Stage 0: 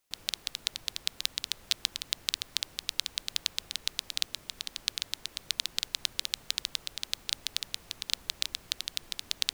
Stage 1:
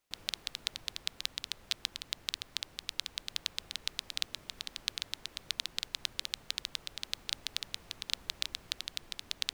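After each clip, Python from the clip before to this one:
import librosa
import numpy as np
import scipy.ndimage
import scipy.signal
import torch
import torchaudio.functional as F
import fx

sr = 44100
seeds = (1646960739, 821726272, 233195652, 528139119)

y = fx.rider(x, sr, range_db=10, speed_s=2.0)
y = fx.high_shelf(y, sr, hz=4800.0, db=-7.5)
y = y * librosa.db_to_amplitude(-1.5)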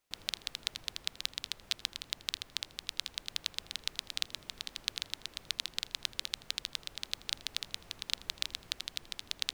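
y = x + 10.0 ** (-21.5 / 20.0) * np.pad(x, (int(81 * sr / 1000.0), 0))[:len(x)]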